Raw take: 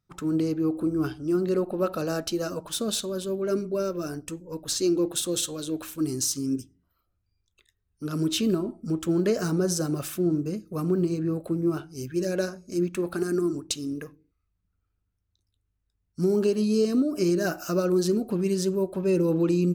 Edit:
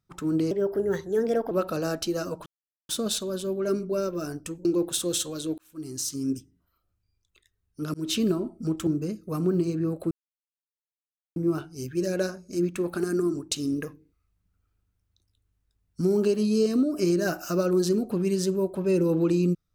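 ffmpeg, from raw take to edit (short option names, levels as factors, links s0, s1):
-filter_complex "[0:a]asplit=11[s0][s1][s2][s3][s4][s5][s6][s7][s8][s9][s10];[s0]atrim=end=0.514[s11];[s1]atrim=start=0.51:end=1.76,asetpts=PTS-STARTPTS,asetrate=55125,aresample=44100[s12];[s2]atrim=start=1.756:end=2.71,asetpts=PTS-STARTPTS,afade=t=out:st=0.95:d=0.004:c=hsin,apad=pad_dur=0.43[s13];[s3]atrim=start=2.71:end=4.472,asetpts=PTS-STARTPTS,afade=t=in:d=0.004:c=hsin[s14];[s4]atrim=start=4.878:end=5.81,asetpts=PTS-STARTPTS,afade=t=out:st=0.928:d=0.004:c=hsin[s15];[s5]atrim=start=5.81:end=8.17,asetpts=PTS-STARTPTS,afade=t=in:d=0.74,afade=t=out:st=2.356:d=0.004:c=hsin[s16];[s6]atrim=start=8.17:end=9.102,asetpts=PTS-STARTPTS,afade=t=in:d=0.26:c=qsin[s17];[s7]atrim=start=10.308:end=11.55,asetpts=PTS-STARTPTS,afade=t=out:st=1.238:d=0.004:c=hsin,apad=pad_dur=1.25[s18];[s8]atrim=start=11.55:end=13.752,asetpts=PTS-STARTPTS,afade=t=in:d=0.004:c=hsin[s19];[s9]atrim=start=13.748:end=16.202,asetpts=PTS-STARTPTS,volume=1.58[s20];[s10]atrim=start=16.198[s21];[s11][s12]acrossfade=d=0.004:c1=hsin:c2=hsin[s22];[s13][s14]concat=n=2:v=0:a=1[s23];[s22][s23]acrossfade=d=0.004:c1=hsin:c2=hsin[s24];[s15][s16][s17]concat=n=3:v=0:a=1[s25];[s24][s25]acrossfade=d=0.004:c1=hsin:c2=hsin[s26];[s18][s19]concat=n=2:v=0:a=1[s27];[s26][s27]acrossfade=d=0.004:c1=hsin:c2=hsin[s28];[s28][s20]acrossfade=d=0.004:c1=hsin:c2=hsin[s29];[s29][s21]acrossfade=d=0.004:c1=hsin:c2=hsin"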